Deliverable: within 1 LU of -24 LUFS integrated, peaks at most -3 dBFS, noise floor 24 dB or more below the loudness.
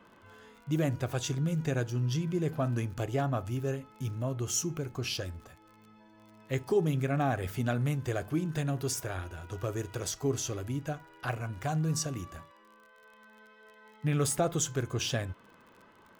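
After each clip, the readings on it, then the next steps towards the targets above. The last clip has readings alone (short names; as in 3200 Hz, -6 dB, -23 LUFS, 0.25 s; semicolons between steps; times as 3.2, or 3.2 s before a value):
ticks 36/s; loudness -32.5 LUFS; peak -17.0 dBFS; loudness target -24.0 LUFS
-> de-click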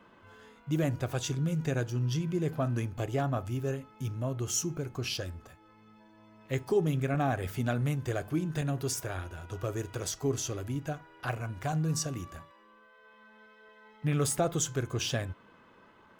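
ticks 0.31/s; loudness -32.5 LUFS; peak -17.0 dBFS; loudness target -24.0 LUFS
-> gain +8.5 dB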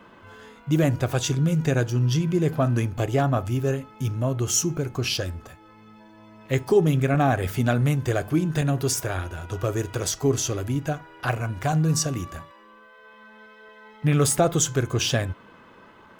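loudness -24.0 LUFS; peak -8.5 dBFS; noise floor -51 dBFS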